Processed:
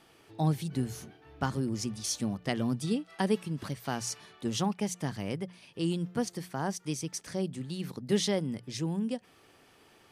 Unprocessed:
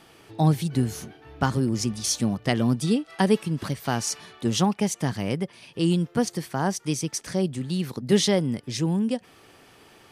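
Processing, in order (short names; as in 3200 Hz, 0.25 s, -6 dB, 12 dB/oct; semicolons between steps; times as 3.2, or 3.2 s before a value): notches 60/120/180 Hz; gain -7.5 dB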